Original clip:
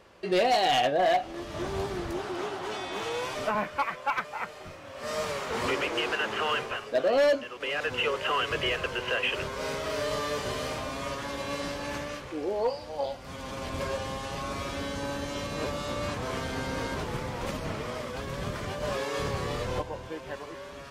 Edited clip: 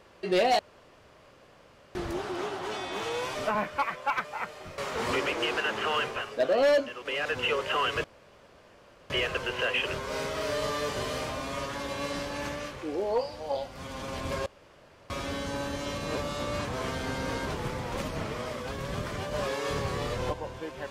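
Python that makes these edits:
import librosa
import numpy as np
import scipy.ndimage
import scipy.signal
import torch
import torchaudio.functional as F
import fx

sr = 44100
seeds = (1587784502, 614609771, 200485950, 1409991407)

y = fx.edit(x, sr, fx.room_tone_fill(start_s=0.59, length_s=1.36),
    fx.cut(start_s=4.78, length_s=0.55),
    fx.insert_room_tone(at_s=8.59, length_s=1.06),
    fx.room_tone_fill(start_s=13.95, length_s=0.64), tone=tone)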